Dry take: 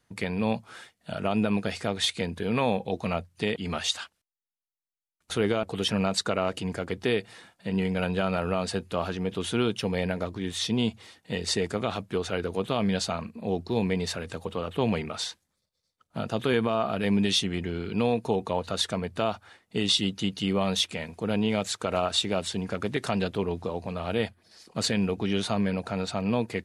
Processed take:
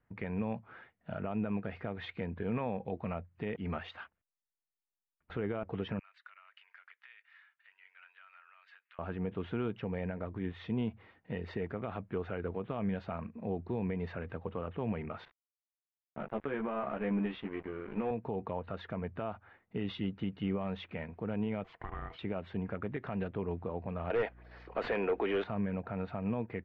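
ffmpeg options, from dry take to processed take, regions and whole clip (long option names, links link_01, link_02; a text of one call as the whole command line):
ffmpeg -i in.wav -filter_complex "[0:a]asettb=1/sr,asplit=3[link_01][link_02][link_03];[link_01]atrim=end=5.994[link_04];[link_02]atrim=start=5.99:end=8.99,asetpts=PTS-STARTPTS,afade=type=in:duration=0.004:curve=qsin,afade=type=out:start_time=2.996:duration=0.004:curve=qsin,acompressor=threshold=-34dB:ratio=6:attack=3.2:release=140:knee=1:detection=peak,highpass=frequency=1500:width=0.5412,highpass=frequency=1500:width=1.3066[link_05];[link_03]atrim=start=8.986[link_06];[link_04][link_05]acrossfade=duration=0.004:curve1=hsin:curve2=qsin[link_07];[link_07][link_06]acrossfade=duration=0.004:curve1=qsin:curve2=hsin,asettb=1/sr,asplit=3[link_08][link_09][link_10];[link_08]atrim=end=15.254[link_11];[link_09]atrim=start=15.25:end=18.11,asetpts=PTS-STARTPTS,afade=type=in:duration=0.004:curve=qsin,afade=type=out:start_time=2.856:duration=0.004:curve=qsin,highpass=210,lowpass=3100,asplit=2[link_12][link_13];[link_13]adelay=14,volume=-3dB[link_14];[link_12][link_14]amix=inputs=2:normalize=0,atrim=end_sample=126126,aeval=exprs='sgn(val(0))*max(abs(val(0))-0.0126,0)':channel_layout=same[link_15];[link_10]atrim=start=18.106[link_16];[link_11][link_15]acrossfade=duration=0.004:curve1=hsin:curve2=qsin[link_17];[link_17][link_16]acrossfade=duration=0.004:curve1=qsin:curve2=hsin,asettb=1/sr,asplit=3[link_18][link_19][link_20];[link_18]atrim=end=21.644[link_21];[link_19]atrim=start=21.64:end=22.19,asetpts=PTS-STARTPTS,afade=type=in:duration=0.004:curve=qsin,afade=type=out:start_time=0.546:duration=0.004:curve=qsin,aeval=exprs='val(0)*sin(2*PI*570*n/s)':channel_layout=same,acompressor=threshold=-31dB:ratio=6:attack=3.2:release=140:knee=1:detection=peak[link_22];[link_20]atrim=start=22.186[link_23];[link_21][link_22]acrossfade=duration=0.004:curve1=hsin:curve2=qsin[link_24];[link_24][link_23]acrossfade=duration=0.004:curve1=qsin:curve2=hsin,asettb=1/sr,asplit=3[link_25][link_26][link_27];[link_25]atrim=end=24.104[link_28];[link_26]atrim=start=24.1:end=25.44,asetpts=PTS-STARTPTS,afade=type=in:duration=0.004:curve=qsin,afade=type=out:start_time=1.336:duration=0.004:curve=qsin,highpass=frequency=360:width=0.5412,highpass=frequency=360:width=1.3066,aeval=exprs='0.188*sin(PI/2*2.82*val(0)/0.188)':channel_layout=same,aeval=exprs='val(0)+0.00251*(sin(2*PI*60*n/s)+sin(2*PI*2*60*n/s)/2+sin(2*PI*3*60*n/s)/3+sin(2*PI*4*60*n/s)/4+sin(2*PI*5*60*n/s)/5)':channel_layout=same[link_29];[link_27]atrim=start=25.436[link_30];[link_28][link_29]acrossfade=duration=0.004:curve1=hsin:curve2=qsin[link_31];[link_31][link_30]acrossfade=duration=0.004:curve1=qsin:curve2=hsin,lowpass=frequency=2200:width=0.5412,lowpass=frequency=2200:width=1.3066,lowshelf=frequency=93:gain=7,alimiter=limit=-18.5dB:level=0:latency=1:release=143,volume=-6dB" out.wav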